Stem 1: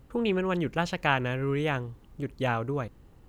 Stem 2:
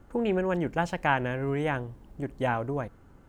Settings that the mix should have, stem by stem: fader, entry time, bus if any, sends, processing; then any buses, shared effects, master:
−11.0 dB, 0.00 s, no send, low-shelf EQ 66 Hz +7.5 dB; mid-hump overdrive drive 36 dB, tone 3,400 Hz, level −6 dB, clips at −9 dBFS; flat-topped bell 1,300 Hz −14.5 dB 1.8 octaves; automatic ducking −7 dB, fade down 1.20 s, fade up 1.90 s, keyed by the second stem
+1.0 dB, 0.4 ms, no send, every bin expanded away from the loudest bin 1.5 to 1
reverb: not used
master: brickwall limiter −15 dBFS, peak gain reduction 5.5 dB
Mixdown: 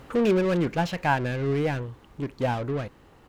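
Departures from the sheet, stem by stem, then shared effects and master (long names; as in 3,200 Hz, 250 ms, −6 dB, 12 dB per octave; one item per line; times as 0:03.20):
stem 1: missing flat-topped bell 1,300 Hz −14.5 dB 1.8 octaves
master: missing brickwall limiter −15 dBFS, peak gain reduction 5.5 dB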